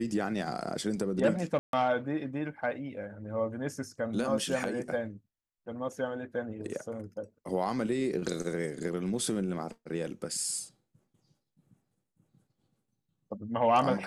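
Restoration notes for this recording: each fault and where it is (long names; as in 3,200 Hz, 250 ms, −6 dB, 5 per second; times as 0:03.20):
0:01.59–0:01.73: drop-out 142 ms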